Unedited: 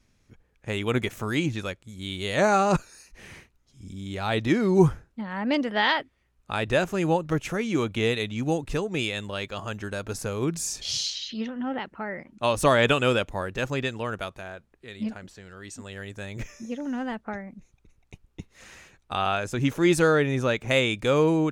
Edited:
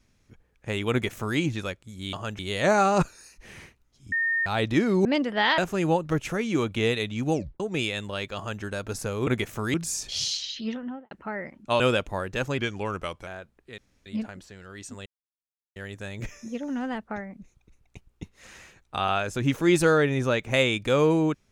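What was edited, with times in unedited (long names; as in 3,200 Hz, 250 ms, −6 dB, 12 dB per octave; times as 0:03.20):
0:00.91–0:01.38: duplicate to 0:10.47
0:03.86–0:04.20: beep over 1,830 Hz −22 dBFS
0:04.79–0:05.44: remove
0:05.97–0:06.78: remove
0:08.53: tape stop 0.27 s
0:09.56–0:09.82: duplicate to 0:02.13
0:11.48–0:11.84: fade out and dull
0:12.53–0:13.02: remove
0:13.80–0:14.42: play speed 90%
0:14.93: splice in room tone 0.28 s
0:15.93: splice in silence 0.70 s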